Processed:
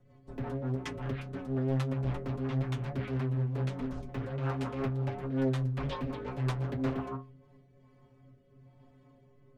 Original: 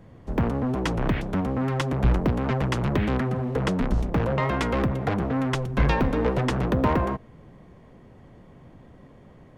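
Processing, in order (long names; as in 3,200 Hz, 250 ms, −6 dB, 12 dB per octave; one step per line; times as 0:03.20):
stiff-string resonator 130 Hz, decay 0.35 s, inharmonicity 0.008
rotating-speaker cabinet horn 5.5 Hz, later 1 Hz, at 0:07.01
highs frequency-modulated by the lows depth 0.78 ms
level +1.5 dB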